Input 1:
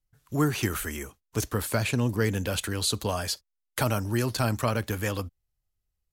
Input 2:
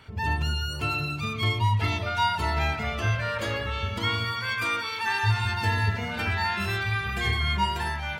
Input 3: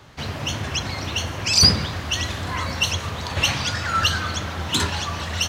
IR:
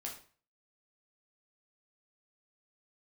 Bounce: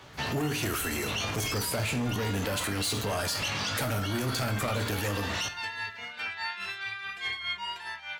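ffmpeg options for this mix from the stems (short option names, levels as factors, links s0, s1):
-filter_complex "[0:a]asoftclip=type=hard:threshold=0.0562,volume=1.41,asplit=2[s0][s1];[s1]volume=0.562[s2];[1:a]bandpass=f=3100:t=q:w=0.62:csg=0,tremolo=f=4.8:d=0.57,volume=0.376[s3];[2:a]asoftclip=type=tanh:threshold=0.224,flanger=delay=15.5:depth=3.9:speed=0.41,alimiter=limit=0.0841:level=0:latency=1,volume=0.447,asplit=2[s4][s5];[s5]volume=0.422[s6];[s0][s4]amix=inputs=2:normalize=0,highpass=f=130:p=1,acompressor=threshold=0.0251:ratio=6,volume=1[s7];[3:a]atrim=start_sample=2205[s8];[s2][s6]amix=inputs=2:normalize=0[s9];[s9][s8]afir=irnorm=-1:irlink=0[s10];[s3][s7][s10]amix=inputs=3:normalize=0,acontrast=80,alimiter=limit=0.075:level=0:latency=1:release=32"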